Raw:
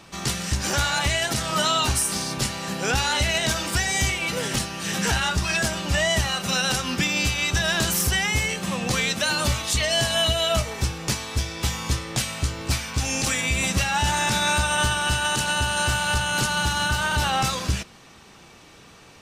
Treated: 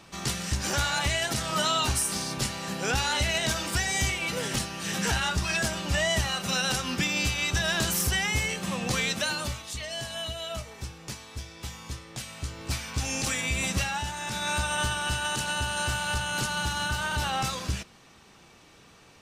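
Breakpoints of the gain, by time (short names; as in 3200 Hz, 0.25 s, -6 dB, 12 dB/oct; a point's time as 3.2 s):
9.2 s -4 dB
9.64 s -13 dB
12.14 s -13 dB
12.89 s -5 dB
13.85 s -5 dB
14.14 s -13 dB
14.58 s -6 dB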